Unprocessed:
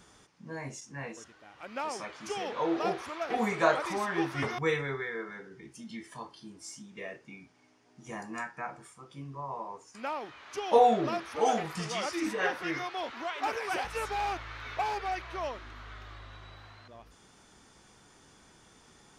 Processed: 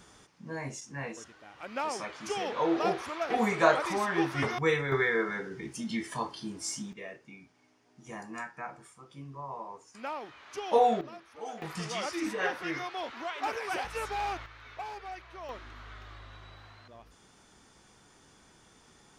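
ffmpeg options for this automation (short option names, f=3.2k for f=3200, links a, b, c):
-af "asetnsamples=n=441:p=0,asendcmd='4.92 volume volume 9dB;6.93 volume volume -2dB;11.01 volume volume -14dB;11.62 volume volume -1dB;14.46 volume volume -8.5dB;15.49 volume volume -1dB',volume=2dB"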